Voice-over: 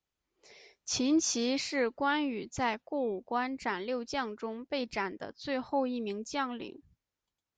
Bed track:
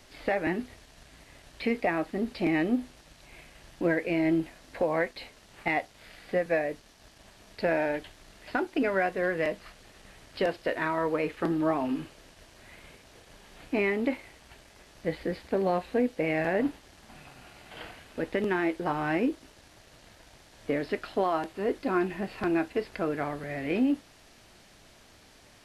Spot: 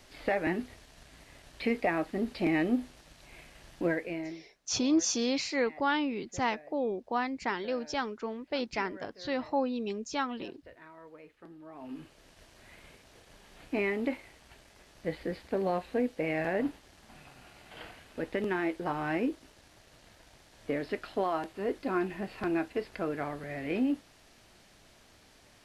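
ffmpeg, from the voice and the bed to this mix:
-filter_complex "[0:a]adelay=3800,volume=1.12[s0];[1:a]volume=7.94,afade=t=out:st=3.76:d=0.62:silence=0.0841395,afade=t=in:st=11.71:d=0.67:silence=0.105925[s1];[s0][s1]amix=inputs=2:normalize=0"

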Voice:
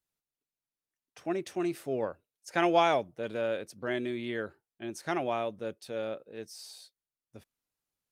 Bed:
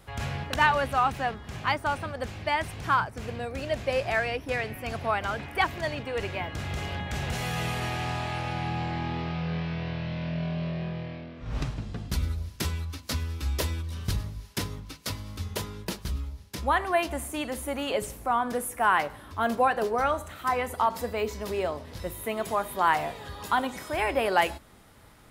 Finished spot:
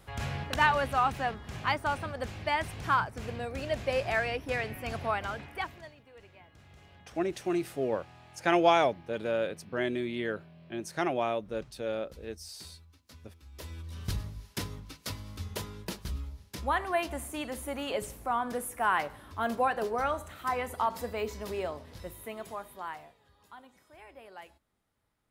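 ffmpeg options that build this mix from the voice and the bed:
-filter_complex "[0:a]adelay=5900,volume=1.19[s0];[1:a]volume=6.31,afade=t=out:st=5:d=0.94:silence=0.0944061,afade=t=in:st=13.52:d=0.55:silence=0.11885,afade=t=out:st=21.46:d=1.7:silence=0.0944061[s1];[s0][s1]amix=inputs=2:normalize=0"

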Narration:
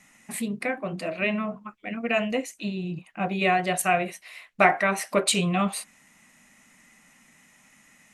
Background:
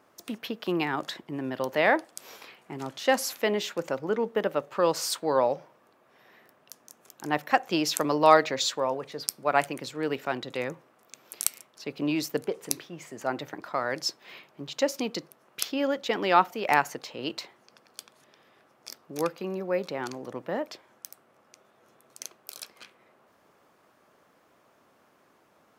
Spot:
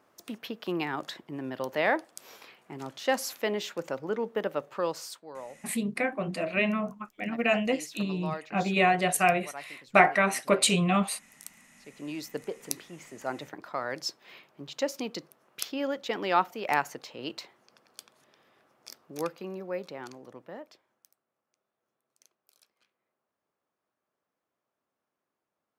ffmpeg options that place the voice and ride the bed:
-filter_complex "[0:a]adelay=5350,volume=0.944[s0];[1:a]volume=3.55,afade=t=out:st=4.67:d=0.56:silence=0.177828,afade=t=in:st=11.75:d=0.91:silence=0.188365,afade=t=out:st=19.18:d=2.02:silence=0.105925[s1];[s0][s1]amix=inputs=2:normalize=0"

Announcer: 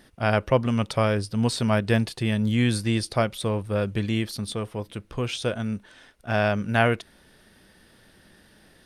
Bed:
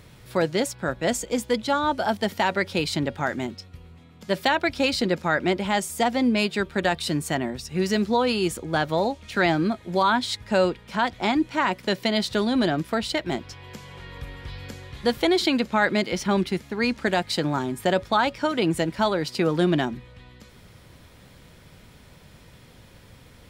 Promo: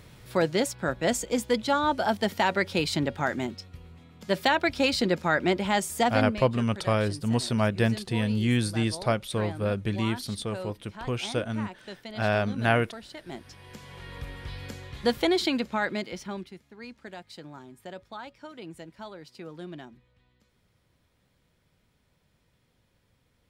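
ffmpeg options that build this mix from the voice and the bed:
-filter_complex "[0:a]adelay=5900,volume=0.75[s0];[1:a]volume=5.31,afade=t=out:st=6.08:d=0.34:silence=0.158489,afade=t=in:st=13.17:d=0.97:silence=0.158489,afade=t=out:st=14.99:d=1.55:silence=0.125893[s1];[s0][s1]amix=inputs=2:normalize=0"

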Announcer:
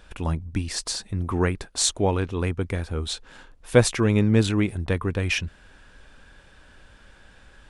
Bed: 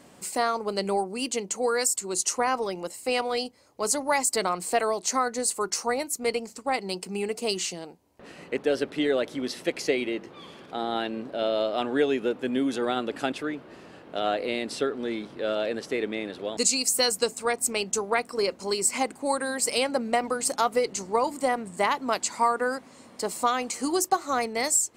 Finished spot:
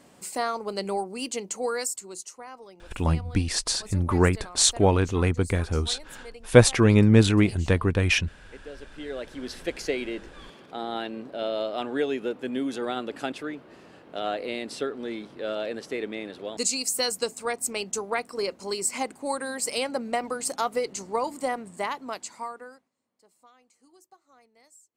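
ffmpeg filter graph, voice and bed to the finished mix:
-filter_complex "[0:a]adelay=2800,volume=1.33[s0];[1:a]volume=3.98,afade=t=out:st=1.65:d=0.67:silence=0.177828,afade=t=in:st=8.91:d=0.73:silence=0.188365,afade=t=out:st=21.45:d=1.45:silence=0.0334965[s1];[s0][s1]amix=inputs=2:normalize=0"

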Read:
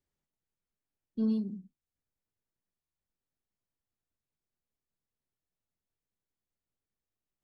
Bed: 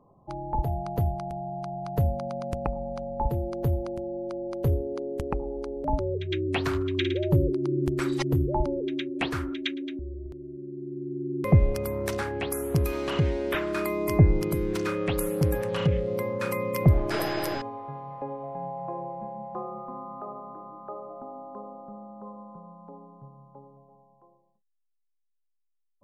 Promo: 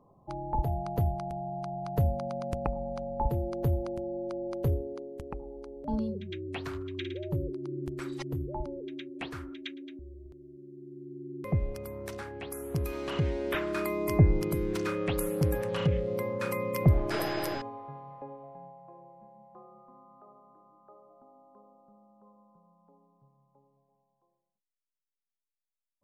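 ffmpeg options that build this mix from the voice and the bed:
-filter_complex "[0:a]adelay=4700,volume=0.668[s0];[1:a]volume=1.78,afade=t=out:st=4.53:d=0.58:silence=0.398107,afade=t=in:st=12.41:d=1.16:silence=0.446684,afade=t=out:st=17.45:d=1.37:silence=0.199526[s1];[s0][s1]amix=inputs=2:normalize=0"

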